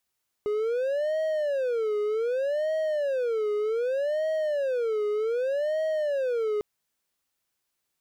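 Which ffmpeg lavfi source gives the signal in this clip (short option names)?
-f lavfi -i "aevalsrc='0.0794*(1-4*abs(mod((524.5*t-107.5/(2*PI*0.65)*sin(2*PI*0.65*t))+0.25,1)-0.5))':d=6.15:s=44100"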